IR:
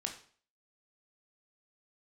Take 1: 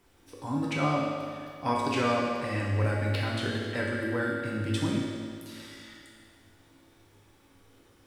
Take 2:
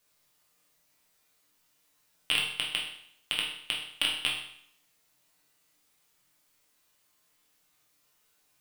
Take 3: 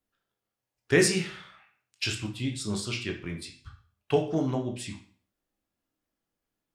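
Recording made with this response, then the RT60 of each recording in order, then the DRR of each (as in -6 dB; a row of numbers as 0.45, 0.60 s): 3; 2.2, 0.65, 0.45 s; -4.0, -3.0, 2.5 dB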